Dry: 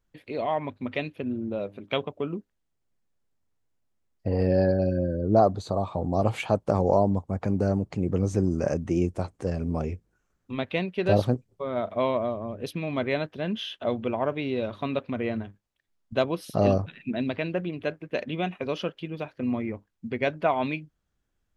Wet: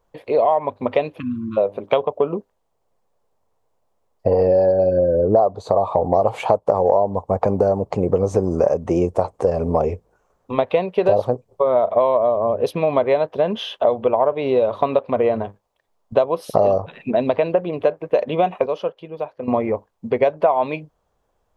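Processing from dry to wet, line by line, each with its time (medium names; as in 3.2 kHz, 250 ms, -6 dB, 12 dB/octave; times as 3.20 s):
1.19–1.57 s: spectral selection erased 330–1000 Hz
18.66–19.48 s: gain -10 dB
whole clip: high-order bell 690 Hz +14 dB; compression 6:1, threshold -19 dBFS; trim +5.5 dB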